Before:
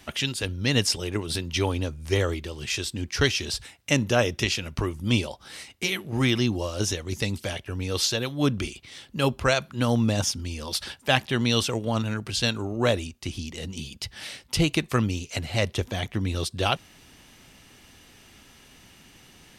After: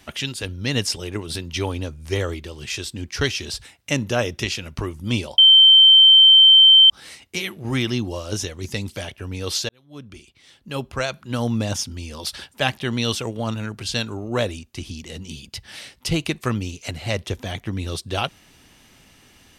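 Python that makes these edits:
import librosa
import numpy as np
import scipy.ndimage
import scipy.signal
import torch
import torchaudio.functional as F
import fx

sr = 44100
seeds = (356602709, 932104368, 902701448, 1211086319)

y = fx.edit(x, sr, fx.insert_tone(at_s=5.38, length_s=1.52, hz=3110.0, db=-7.0),
    fx.fade_in_span(start_s=8.17, length_s=1.86), tone=tone)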